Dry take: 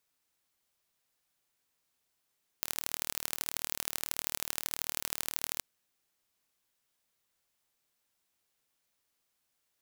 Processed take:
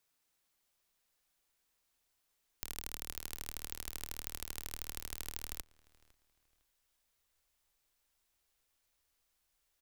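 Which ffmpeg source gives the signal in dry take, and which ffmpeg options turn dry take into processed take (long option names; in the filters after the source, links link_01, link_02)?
-f lavfi -i "aevalsrc='0.631*eq(mod(n,1148),0)*(0.5+0.5*eq(mod(n,3444),0))':duration=2.97:sample_rate=44100"
-filter_complex "[0:a]asubboost=boost=8.5:cutoff=54,acrossover=split=350[link_01][link_02];[link_02]acompressor=threshold=-43dB:ratio=2[link_03];[link_01][link_03]amix=inputs=2:normalize=0,asplit=2[link_04][link_05];[link_05]adelay=506,lowpass=frequency=3700:poles=1,volume=-23dB,asplit=2[link_06][link_07];[link_07]adelay=506,lowpass=frequency=3700:poles=1,volume=0.31[link_08];[link_04][link_06][link_08]amix=inputs=3:normalize=0"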